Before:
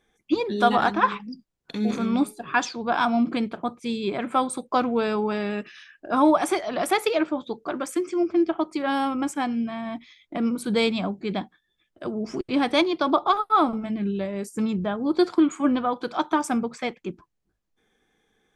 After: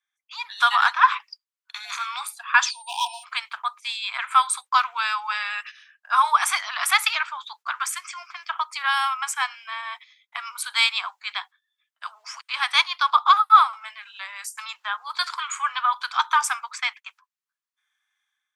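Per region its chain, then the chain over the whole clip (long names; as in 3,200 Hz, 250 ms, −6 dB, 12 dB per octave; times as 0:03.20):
0:02.69–0:03.23: hard clipping −17.5 dBFS + steady tone 8,800 Hz −52 dBFS + linear-phase brick-wall band-stop 1,000–2,400 Hz
whole clip: noise gate −38 dBFS, range −13 dB; Butterworth high-pass 990 Hz 48 dB per octave; automatic gain control gain up to 9 dB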